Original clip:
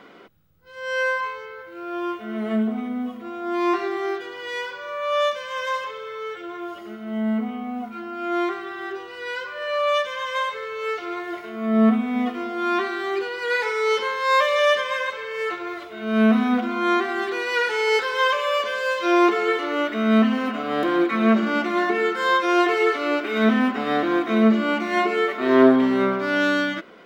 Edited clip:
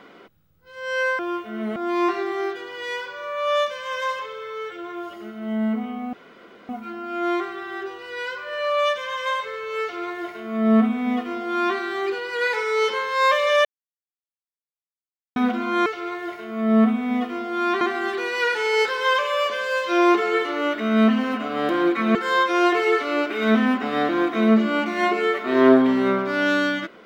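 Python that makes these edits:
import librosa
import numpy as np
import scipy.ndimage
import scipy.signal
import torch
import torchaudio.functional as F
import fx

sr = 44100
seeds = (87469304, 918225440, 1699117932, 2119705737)

y = fx.edit(x, sr, fx.cut(start_s=1.19, length_s=0.75),
    fx.cut(start_s=2.51, length_s=0.9),
    fx.insert_room_tone(at_s=7.78, length_s=0.56),
    fx.duplicate(start_s=10.91, length_s=1.95, to_s=16.95),
    fx.silence(start_s=14.74, length_s=1.71),
    fx.cut(start_s=21.29, length_s=0.8), tone=tone)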